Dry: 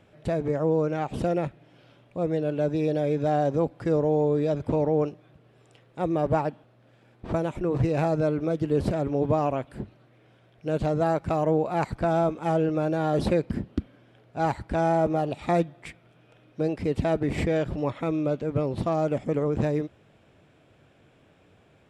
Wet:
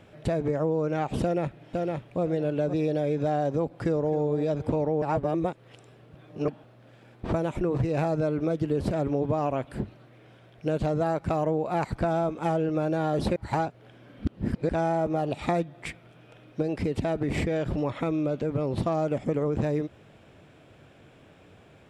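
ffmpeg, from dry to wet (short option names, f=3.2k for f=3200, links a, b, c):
-filter_complex "[0:a]asplit=2[a][b];[b]afade=t=in:st=1.22:d=0.01,afade=t=out:st=2.22:d=0.01,aecho=0:1:510|1020|1530|2040:0.421697|0.126509|0.0379527|0.0113858[c];[a][c]amix=inputs=2:normalize=0,asplit=2[d][e];[e]afade=t=in:st=3.71:d=0.01,afade=t=out:st=4.17:d=0.01,aecho=0:1:260|520|780:0.266073|0.0665181|0.0166295[f];[d][f]amix=inputs=2:normalize=0,asettb=1/sr,asplit=3[g][h][i];[g]atrim=end=16.624[j];[h]atrim=start=16.62:end=18.73,asetpts=PTS-STARTPTS,afade=t=in:d=0.004:c=qsin,afade=t=out:st=2.106:d=0.004:c=qsin,acompressor=threshold=-27dB:ratio=2:attack=3.2:release=140:knee=1:detection=peak[k];[i]atrim=start=18.726[l];[j][k]acrossfade=d=0.004:c1=hsin:c2=qsin[m];[m][l]acrossfade=d=0.004:c1=qsin:c2=hsin,asplit=5[n][o][p][q][r];[n]atrim=end=5.022[s];[o]atrim=start=5.018:end=6.482,asetpts=PTS-STARTPTS,areverse[t];[p]atrim=start=6.478:end=13.362[u];[q]atrim=start=13.358:end=14.692,asetpts=PTS-STARTPTS,areverse[v];[r]atrim=start=14.688[w];[s][t]acrossfade=d=0.004:c1=hsin:c2=hsin[x];[x][u]acrossfade=d=0.004:c1=hsin:c2=hsin[y];[y][v]acrossfade=d=0.004:c1=hsin:c2=hsin[z];[z][w]acrossfade=d=0.004:c1=hsin:c2=hsin,acompressor=threshold=-29dB:ratio=4,volume=5dB"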